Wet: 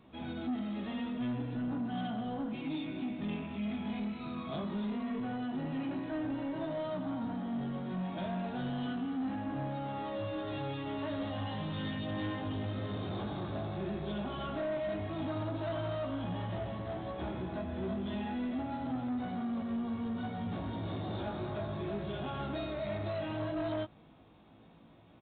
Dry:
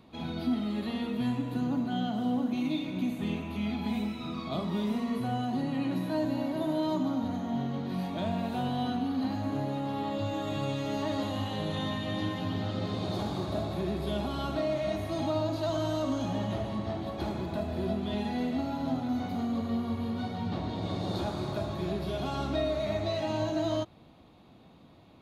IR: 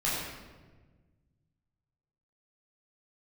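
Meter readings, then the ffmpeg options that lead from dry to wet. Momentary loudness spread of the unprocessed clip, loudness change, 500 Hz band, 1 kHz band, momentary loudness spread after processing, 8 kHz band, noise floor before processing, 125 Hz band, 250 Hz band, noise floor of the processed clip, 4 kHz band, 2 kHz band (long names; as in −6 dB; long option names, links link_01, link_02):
4 LU, −5.0 dB, −5.5 dB, −5.0 dB, 2 LU, below −25 dB, −55 dBFS, −4.5 dB, −5.0 dB, −58 dBFS, −7.0 dB, −3.0 dB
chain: -af "equalizer=frequency=1600:width=4.1:gain=4,flanger=delay=15.5:depth=4.6:speed=0.11,aresample=8000,asoftclip=type=tanh:threshold=-30.5dB,aresample=44100"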